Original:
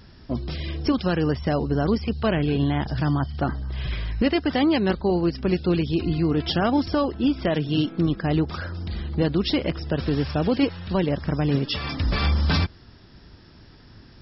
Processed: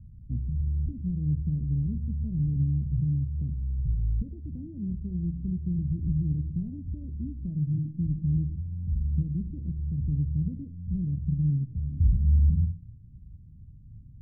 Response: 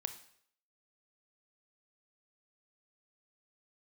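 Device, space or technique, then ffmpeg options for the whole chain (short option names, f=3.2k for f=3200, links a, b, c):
club heard from the street: -filter_complex "[0:a]asettb=1/sr,asplit=3[a][b][c];[a]atrim=end=2.784[d];[b]atrim=start=2.78:end=4.4,asetpts=PTS-STARTPTS,afade=t=in:d=0.004:c=qsin,afade=t=out:st=1.616:d=0.004:c=qsin,equalizer=f=460:t=o:w=0.44:g=13[e];[c]atrim=start=4.396[f];[d][e]acrossfade=d=0.004:c1=hsin:c2=qsin[g];[g][f]acrossfade=d=0.004:c1=qsin:c2=hsin,alimiter=limit=-15.5dB:level=0:latency=1:release=228,lowpass=f=160:w=0.5412,lowpass=f=160:w=1.3066[h];[1:a]atrim=start_sample=2205[i];[h][i]afir=irnorm=-1:irlink=0,volume=4dB"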